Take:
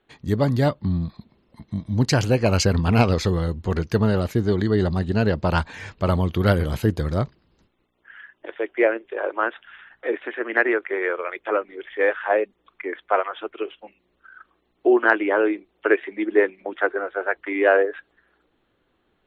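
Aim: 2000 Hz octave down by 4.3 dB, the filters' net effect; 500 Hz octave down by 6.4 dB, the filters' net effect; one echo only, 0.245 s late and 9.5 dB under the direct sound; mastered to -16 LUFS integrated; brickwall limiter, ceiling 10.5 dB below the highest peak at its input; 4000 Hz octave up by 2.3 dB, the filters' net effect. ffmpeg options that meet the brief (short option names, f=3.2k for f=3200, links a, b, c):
-af "equalizer=f=500:t=o:g=-8,equalizer=f=2k:t=o:g=-6,equalizer=f=4k:t=o:g=4.5,alimiter=limit=-15dB:level=0:latency=1,aecho=1:1:245:0.335,volume=11dB"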